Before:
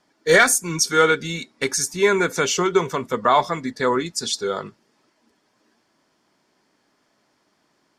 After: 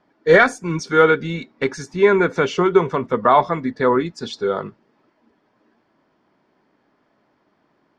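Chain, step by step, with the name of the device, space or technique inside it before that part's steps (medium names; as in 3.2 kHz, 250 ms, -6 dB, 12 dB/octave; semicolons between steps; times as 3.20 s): phone in a pocket (low-pass 3.8 kHz 12 dB/octave; treble shelf 2.3 kHz -11 dB); trim +4.5 dB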